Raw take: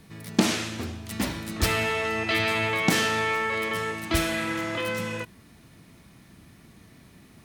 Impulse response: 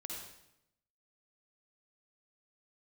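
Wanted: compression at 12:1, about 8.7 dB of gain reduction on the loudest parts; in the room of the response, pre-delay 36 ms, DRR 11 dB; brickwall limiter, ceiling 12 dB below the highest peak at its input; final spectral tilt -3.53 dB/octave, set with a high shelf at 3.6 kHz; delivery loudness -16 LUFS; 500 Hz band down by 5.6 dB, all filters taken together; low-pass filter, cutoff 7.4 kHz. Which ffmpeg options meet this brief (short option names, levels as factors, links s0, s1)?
-filter_complex "[0:a]lowpass=7400,equalizer=f=500:t=o:g=-7.5,highshelf=f=3600:g=5,acompressor=threshold=0.0501:ratio=12,alimiter=level_in=1.19:limit=0.0631:level=0:latency=1,volume=0.841,asplit=2[s0][s1];[1:a]atrim=start_sample=2205,adelay=36[s2];[s1][s2]afir=irnorm=-1:irlink=0,volume=0.355[s3];[s0][s3]amix=inputs=2:normalize=0,volume=7.5"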